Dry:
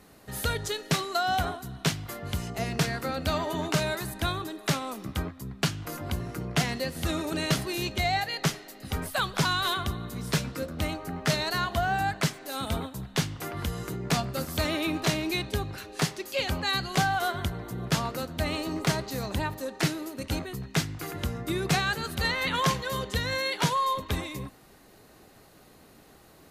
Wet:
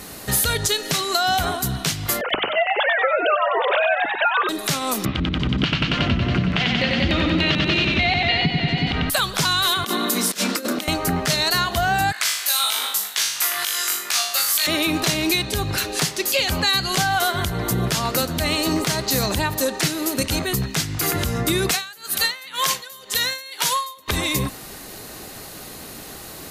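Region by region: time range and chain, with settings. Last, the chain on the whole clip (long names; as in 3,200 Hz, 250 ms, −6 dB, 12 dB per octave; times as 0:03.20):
0:02.21–0:04.49: three sine waves on the formant tracks + mains-hum notches 50/100/150/200 Hz + echo with shifted repeats 94 ms, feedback 35%, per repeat +90 Hz, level −4.5 dB
0:05.05–0:09.10: high-frequency loss of the air 92 metres + auto-filter low-pass square 3.4 Hz 240–3,000 Hz + feedback echo with a swinging delay time 92 ms, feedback 78%, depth 60 cents, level −4.5 dB
0:09.84–0:10.88: Butterworth high-pass 200 Hz 72 dB per octave + double-tracking delay 31 ms −12 dB + compressor whose output falls as the input rises −38 dBFS, ratio −0.5
0:12.12–0:14.67: high-pass filter 1,300 Hz + flutter between parallel walls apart 3.4 metres, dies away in 0.42 s
0:21.71–0:24.08: high-pass filter 710 Hz 6 dB per octave + high-shelf EQ 11,000 Hz +11 dB + tremolo with a sine in dB 2 Hz, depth 28 dB
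whole clip: high-shelf EQ 2,700 Hz +9.5 dB; downward compressor, threshold −31 dBFS; boost into a limiter +22 dB; level −7.5 dB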